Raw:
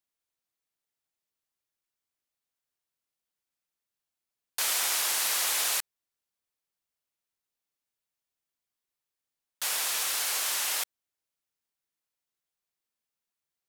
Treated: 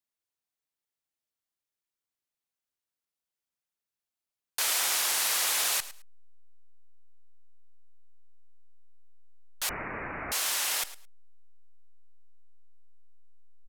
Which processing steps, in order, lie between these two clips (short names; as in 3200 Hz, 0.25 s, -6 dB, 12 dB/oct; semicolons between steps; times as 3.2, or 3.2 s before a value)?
in parallel at -4 dB: backlash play -32.5 dBFS; on the sum: feedback echo 0.108 s, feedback 19%, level -16 dB; 9.69–10.32 inverted band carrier 2900 Hz; gain -3.5 dB